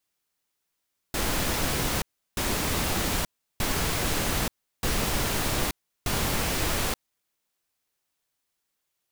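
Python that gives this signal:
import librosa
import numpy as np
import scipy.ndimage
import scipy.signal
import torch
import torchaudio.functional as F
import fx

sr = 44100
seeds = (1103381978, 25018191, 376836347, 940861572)

y = fx.noise_burst(sr, seeds[0], colour='pink', on_s=0.88, off_s=0.35, bursts=5, level_db=-26.5)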